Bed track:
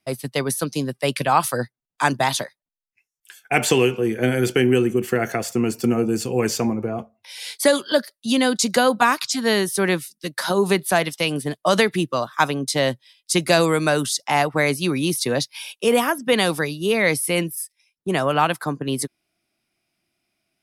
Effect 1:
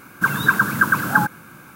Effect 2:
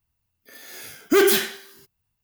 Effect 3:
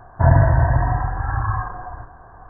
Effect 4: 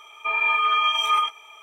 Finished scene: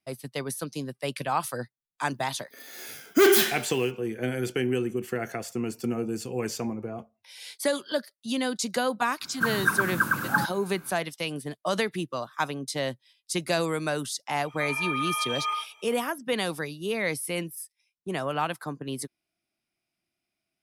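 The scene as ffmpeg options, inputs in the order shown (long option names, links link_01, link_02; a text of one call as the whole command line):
ffmpeg -i bed.wav -i cue0.wav -i cue1.wav -i cue2.wav -i cue3.wav -filter_complex "[0:a]volume=-9.5dB[link_01];[2:a]highpass=120,atrim=end=2.23,asetpts=PTS-STARTPTS,volume=-1.5dB,afade=type=in:duration=0.004:curve=hsin,afade=type=out:start_time=2.226:duration=0.004:curve=hsin,adelay=2050[link_02];[1:a]atrim=end=1.75,asetpts=PTS-STARTPTS,volume=-7.5dB,afade=type=in:duration=0.05,afade=type=out:start_time=1.7:duration=0.05,adelay=9190[link_03];[4:a]atrim=end=1.62,asetpts=PTS-STARTPTS,volume=-9dB,afade=type=in:duration=0.004:curve=hsin,afade=type=out:start_time=1.616:duration=0.004:curve=hsin,adelay=14350[link_04];[link_01][link_02][link_03][link_04]amix=inputs=4:normalize=0" out.wav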